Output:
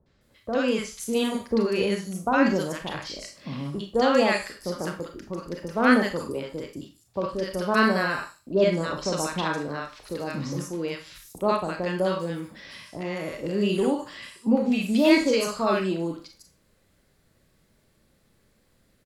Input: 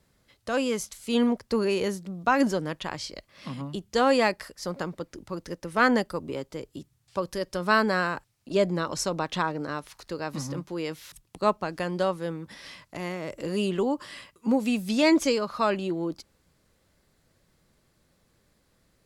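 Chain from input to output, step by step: 11.86–12.51 s: median filter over 3 samples; three bands offset in time lows, mids, highs 60/210 ms, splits 1/5.9 kHz; Schroeder reverb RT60 0.31 s, combs from 28 ms, DRR 4.5 dB; trim +1.5 dB

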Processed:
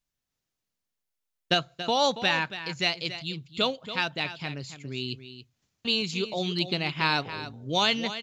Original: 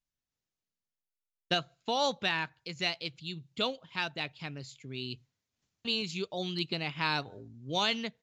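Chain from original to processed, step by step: delay 280 ms -12 dB; trim +5.5 dB

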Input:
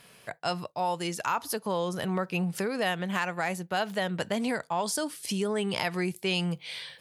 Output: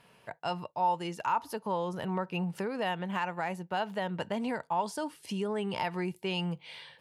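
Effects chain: treble shelf 3.2 kHz -11.5 dB; small resonant body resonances 910/2800 Hz, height 9 dB, ringing for 30 ms; trim -3.5 dB

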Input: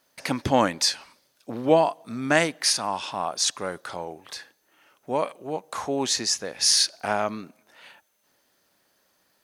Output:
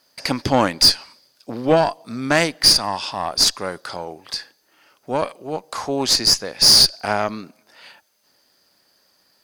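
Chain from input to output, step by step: peaking EQ 4.8 kHz +13.5 dB 0.22 oct; saturation -8 dBFS, distortion -16 dB; Chebyshev shaper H 2 -12 dB, 6 -29 dB, 8 -35 dB, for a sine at -8 dBFS; trim +3.5 dB

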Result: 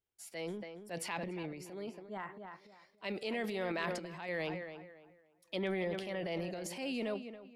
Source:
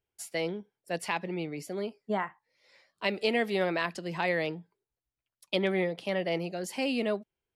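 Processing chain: tape echo 281 ms, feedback 30%, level -11 dB, low-pass 2.6 kHz; random-step tremolo; transient shaper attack -4 dB, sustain +9 dB; trim -6.5 dB

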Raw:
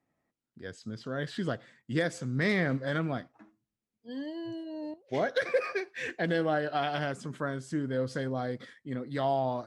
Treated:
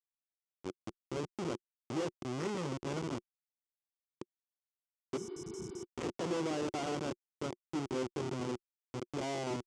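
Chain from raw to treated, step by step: Schmitt trigger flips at -31 dBFS; cabinet simulation 180–7500 Hz, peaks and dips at 200 Hz -4 dB, 360 Hz +8 dB, 650 Hz -5 dB, 1.7 kHz -9 dB, 2.5 kHz -3 dB, 4 kHz -6 dB; spectral replace 5.20–5.81 s, 250–5100 Hz after; trim -1 dB

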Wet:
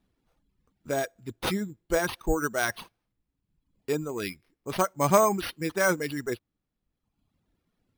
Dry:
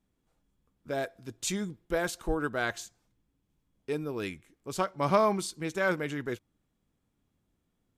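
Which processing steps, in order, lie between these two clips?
sample-and-hold 6×; reverb removal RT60 1.1 s; trim +4.5 dB

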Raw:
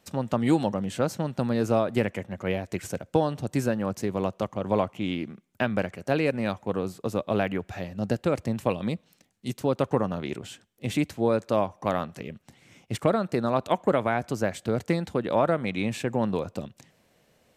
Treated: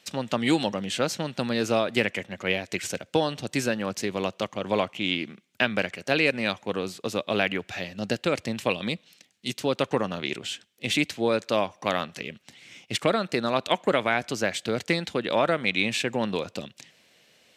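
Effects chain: frequency weighting D

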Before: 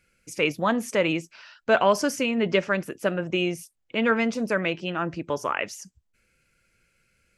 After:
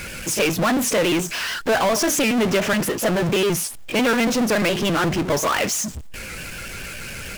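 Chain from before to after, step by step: pitch shift switched off and on +1.5 st, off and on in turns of 70 ms; compression 2.5:1, threshold -24 dBFS, peak gain reduction 7 dB; power-law waveshaper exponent 0.35; warped record 45 rpm, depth 100 cents

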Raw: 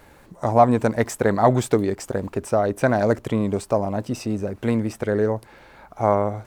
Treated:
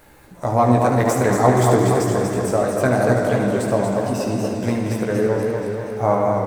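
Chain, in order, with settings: treble shelf 9.6 kHz +9.5 dB; early reflections 16 ms -5 dB, 74 ms -8 dB; on a send at -4 dB: reverberation RT60 2.8 s, pre-delay 50 ms; on the sum: modulated delay 238 ms, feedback 62%, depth 108 cents, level -5 dB; trim -1.5 dB

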